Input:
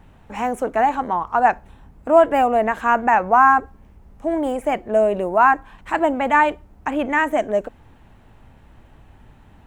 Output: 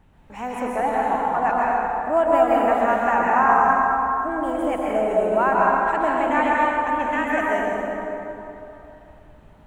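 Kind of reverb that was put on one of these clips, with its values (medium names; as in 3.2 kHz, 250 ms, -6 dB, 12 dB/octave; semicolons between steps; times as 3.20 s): plate-style reverb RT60 3.1 s, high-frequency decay 0.6×, pre-delay 110 ms, DRR -5 dB; trim -7.5 dB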